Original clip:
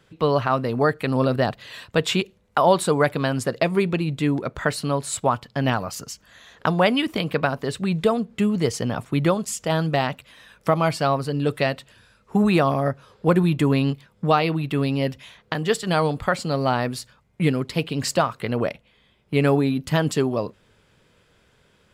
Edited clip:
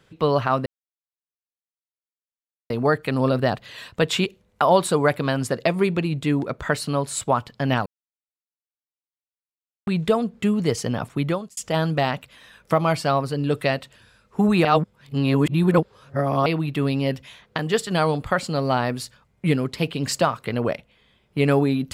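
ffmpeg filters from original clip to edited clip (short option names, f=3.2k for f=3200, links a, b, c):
-filter_complex "[0:a]asplit=7[a][b][c][d][e][f][g];[a]atrim=end=0.66,asetpts=PTS-STARTPTS,afade=t=out:st=0.656:d=0.004:c=hsin,apad=pad_dur=2.04[h];[b]atrim=start=0.66:end=5.82,asetpts=PTS-STARTPTS,afade=t=in:d=0.004:c=hsin,afade=t=out:st=5.156:d=0.004:c=hsin[i];[c]atrim=start=5.82:end=7.83,asetpts=PTS-STARTPTS,volume=0[j];[d]atrim=start=7.83:end=9.53,asetpts=PTS-STARTPTS,afade=t=in:d=0.004:c=hsin,afade=t=out:st=1.1:d=0.6:c=qsin[k];[e]atrim=start=9.53:end=12.612,asetpts=PTS-STARTPTS,afade=t=in:d=0.004:c=hsin[l];[f]atrim=start=12.608:end=14.422,asetpts=PTS-STARTPTS,areverse[m];[g]atrim=start=14.418[n];[h][i][j][k][l]concat=n=5:v=0:a=1[o];[o][m]acrossfade=d=0.004:c1=hsin:c2=hsin[p];[p][n]acrossfade=d=0.004:c1=hsin:c2=hsin"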